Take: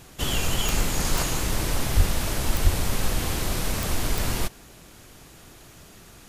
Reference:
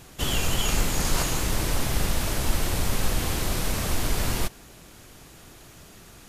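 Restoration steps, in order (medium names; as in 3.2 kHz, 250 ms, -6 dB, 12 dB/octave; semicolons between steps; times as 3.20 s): de-click; 1.96–2.08 s: high-pass 140 Hz 24 dB/octave; 2.63–2.75 s: high-pass 140 Hz 24 dB/octave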